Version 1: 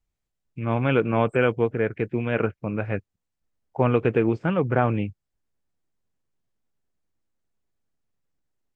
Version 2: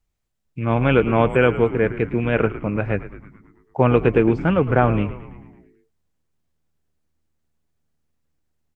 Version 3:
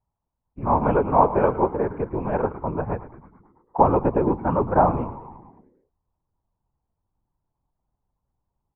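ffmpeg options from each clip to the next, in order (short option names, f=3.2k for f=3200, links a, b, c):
-filter_complex "[0:a]asplit=8[a][b][c][d][e][f][g][h];[b]adelay=110,afreqshift=-78,volume=-14dB[i];[c]adelay=220,afreqshift=-156,volume=-18.3dB[j];[d]adelay=330,afreqshift=-234,volume=-22.6dB[k];[e]adelay=440,afreqshift=-312,volume=-26.9dB[l];[f]adelay=550,afreqshift=-390,volume=-31.2dB[m];[g]adelay=660,afreqshift=-468,volume=-35.5dB[n];[h]adelay=770,afreqshift=-546,volume=-39.8dB[o];[a][i][j][k][l][m][n][o]amix=inputs=8:normalize=0,volume=4.5dB"
-af "lowpass=f=920:t=q:w=6.5,afftfilt=real='hypot(re,im)*cos(2*PI*random(0))':imag='hypot(re,im)*sin(2*PI*random(1))':win_size=512:overlap=0.75"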